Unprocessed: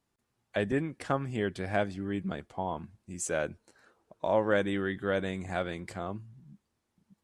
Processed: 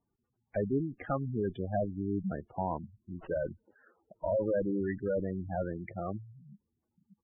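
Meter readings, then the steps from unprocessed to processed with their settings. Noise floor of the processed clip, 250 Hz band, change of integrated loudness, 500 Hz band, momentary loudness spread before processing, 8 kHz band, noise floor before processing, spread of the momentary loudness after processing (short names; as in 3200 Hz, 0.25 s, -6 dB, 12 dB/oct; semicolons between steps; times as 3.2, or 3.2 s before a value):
-83 dBFS, -0.5 dB, -2.0 dB, -1.5 dB, 10 LU, under -35 dB, -81 dBFS, 9 LU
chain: tube stage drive 27 dB, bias 0.7; downsampling 8000 Hz; spectral gate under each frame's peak -10 dB strong; gain +4 dB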